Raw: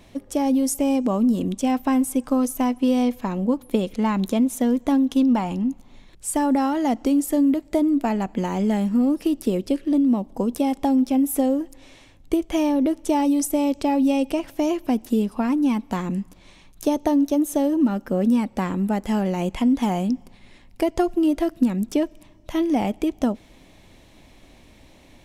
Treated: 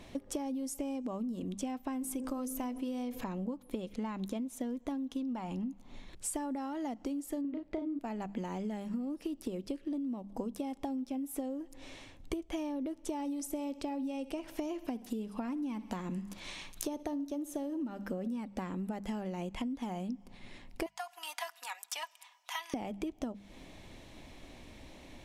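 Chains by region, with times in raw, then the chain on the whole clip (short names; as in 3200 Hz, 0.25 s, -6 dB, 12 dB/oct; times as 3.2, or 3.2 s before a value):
2.01–3.24 high shelf 11000 Hz +8 dB + de-hum 52.08 Hz, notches 13 + fast leveller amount 50%
7.41–7.99 LPF 3100 Hz + doubler 35 ms -4 dB
13.19–18.32 feedback echo 64 ms, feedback 47%, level -19 dB + mismatched tape noise reduction encoder only
20.86–22.74 elliptic high-pass 840 Hz, stop band 80 dB + high shelf 6600 Hz +5.5 dB + comb 4.1 ms, depth 55%
whole clip: high shelf 12000 Hz -8 dB; notches 50/100/150/200 Hz; compressor 16:1, threshold -33 dBFS; gain -1 dB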